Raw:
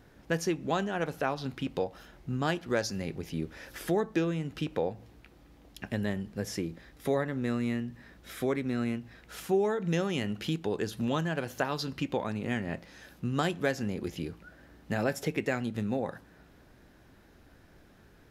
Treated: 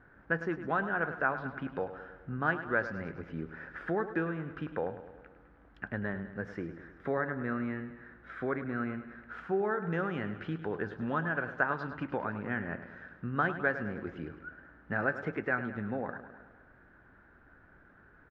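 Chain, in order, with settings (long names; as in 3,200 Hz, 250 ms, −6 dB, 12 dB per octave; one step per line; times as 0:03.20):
low-pass with resonance 1,500 Hz, resonance Q 4.3
repeating echo 104 ms, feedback 59%, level −12 dB
level −5 dB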